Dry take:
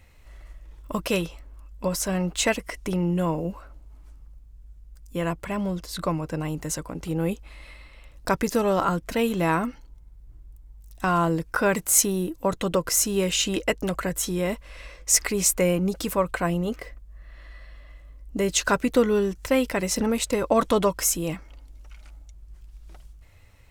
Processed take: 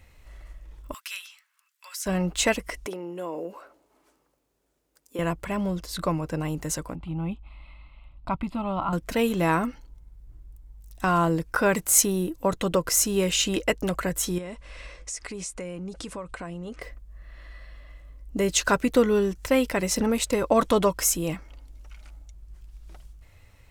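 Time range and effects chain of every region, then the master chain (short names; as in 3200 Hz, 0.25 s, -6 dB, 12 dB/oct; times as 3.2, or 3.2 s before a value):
0.94–2.06 HPF 1500 Hz 24 dB/oct + compressor 1.5:1, threshold -40 dBFS
2.86–5.19 compressor 4:1, threshold -29 dBFS + resonant high-pass 390 Hz, resonance Q 1.5
6.95–8.93 tape spacing loss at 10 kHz 22 dB + fixed phaser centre 1700 Hz, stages 6
14.38–16.82 compressor 4:1, threshold -34 dBFS + steep low-pass 10000 Hz 48 dB/oct
whole clip: dry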